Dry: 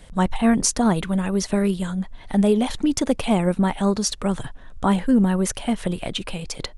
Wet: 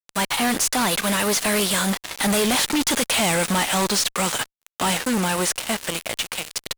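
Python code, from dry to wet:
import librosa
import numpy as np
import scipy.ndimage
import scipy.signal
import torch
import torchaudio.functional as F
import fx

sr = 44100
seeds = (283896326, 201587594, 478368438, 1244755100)

y = fx.envelope_flatten(x, sr, power=0.6)
y = fx.doppler_pass(y, sr, speed_mps=19, closest_m=19.0, pass_at_s=2.6)
y = fx.highpass(y, sr, hz=910.0, slope=6)
y = fx.fuzz(y, sr, gain_db=46.0, gate_db=-43.0)
y = F.gain(torch.from_numpy(y), -5.0).numpy()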